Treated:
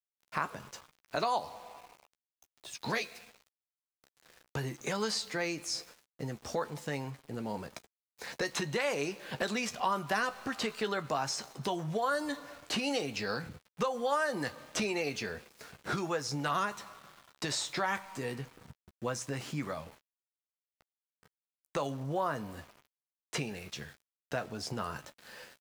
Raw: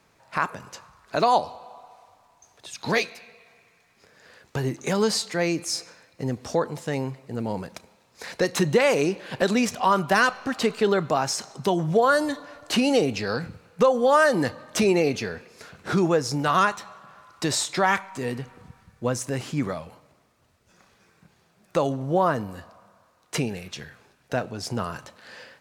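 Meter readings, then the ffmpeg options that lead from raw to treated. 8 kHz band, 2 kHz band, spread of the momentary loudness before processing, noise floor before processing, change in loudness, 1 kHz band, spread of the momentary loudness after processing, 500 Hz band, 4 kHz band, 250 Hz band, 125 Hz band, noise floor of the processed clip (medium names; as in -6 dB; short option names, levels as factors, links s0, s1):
-8.5 dB, -9.0 dB, 16 LU, -63 dBFS, -11.0 dB, -10.0 dB, 15 LU, -12.5 dB, -7.0 dB, -12.0 dB, -10.5 dB, under -85 dBFS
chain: -filter_complex "[0:a]acrossover=split=820|7400[s0][s1][s2];[s0]acompressor=threshold=0.0316:ratio=4[s3];[s1]acompressor=threshold=0.0501:ratio=4[s4];[s2]acompressor=threshold=0.00447:ratio=4[s5];[s3][s4][s5]amix=inputs=3:normalize=0,aeval=exprs='val(0)*gte(abs(val(0)),0.00501)':c=same,asplit=2[s6][s7];[s7]adelay=14,volume=0.316[s8];[s6][s8]amix=inputs=2:normalize=0,volume=0.531"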